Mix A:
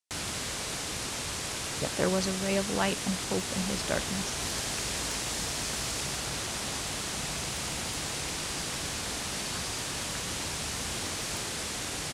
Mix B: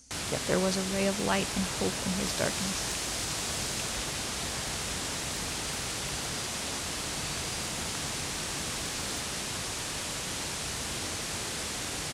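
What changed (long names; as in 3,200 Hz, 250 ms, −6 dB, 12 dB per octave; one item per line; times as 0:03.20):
speech: entry −1.50 s
second sound: entry −2.20 s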